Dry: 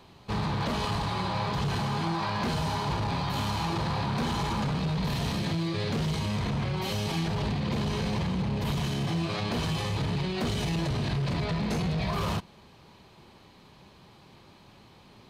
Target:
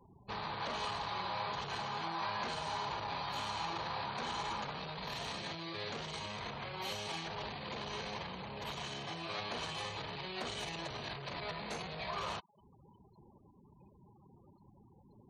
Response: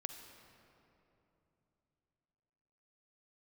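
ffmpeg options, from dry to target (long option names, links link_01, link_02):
-filter_complex "[0:a]acrossover=split=450[link_01][link_02];[link_01]acompressor=threshold=-47dB:ratio=4[link_03];[link_03][link_02]amix=inputs=2:normalize=0,afftfilt=real='re*gte(hypot(re,im),0.00501)':imag='im*gte(hypot(re,im),0.00501)':win_size=1024:overlap=0.75,bandreject=frequency=5100:width=11,volume=-5.5dB"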